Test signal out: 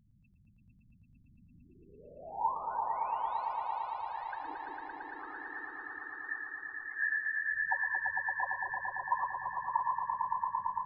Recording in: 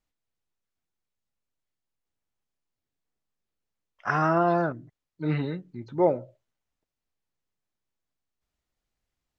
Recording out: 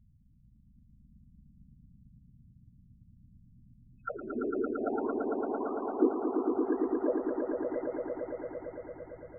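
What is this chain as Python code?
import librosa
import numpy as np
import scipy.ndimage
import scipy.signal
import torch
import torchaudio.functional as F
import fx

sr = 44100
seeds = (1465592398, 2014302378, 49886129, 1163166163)

p1 = fx.reverse_delay_fb(x, sr, ms=656, feedback_pct=60, wet_db=-8)
p2 = fx.peak_eq(p1, sr, hz=83.0, db=-10.0, octaves=0.43)
p3 = fx.auto_wah(p2, sr, base_hz=370.0, top_hz=2600.0, q=19.0, full_db=-21.5, direction='down')
p4 = fx.add_hum(p3, sr, base_hz=60, snr_db=22)
p5 = fx.whisperise(p4, sr, seeds[0])
p6 = fx.spec_topn(p5, sr, count=8)
p7 = p6 + fx.echo_swell(p6, sr, ms=113, loudest=5, wet_db=-5, dry=0)
y = p7 * 10.0 ** (6.0 / 20.0)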